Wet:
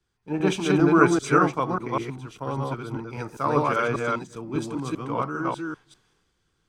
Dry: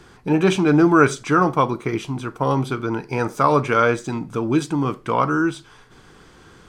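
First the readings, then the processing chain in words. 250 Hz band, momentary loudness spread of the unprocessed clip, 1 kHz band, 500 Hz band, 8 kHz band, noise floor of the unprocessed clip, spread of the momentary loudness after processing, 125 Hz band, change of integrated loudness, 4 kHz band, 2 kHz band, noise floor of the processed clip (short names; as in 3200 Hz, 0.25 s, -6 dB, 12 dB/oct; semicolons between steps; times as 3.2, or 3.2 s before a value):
-5.0 dB, 10 LU, -5.0 dB, -5.0 dB, -4.0 dB, -49 dBFS, 15 LU, -5.5 dB, -5.0 dB, -4.5 dB, -4.5 dB, -73 dBFS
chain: reverse delay 0.198 s, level -0.5 dB; three-band expander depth 70%; gain -8.5 dB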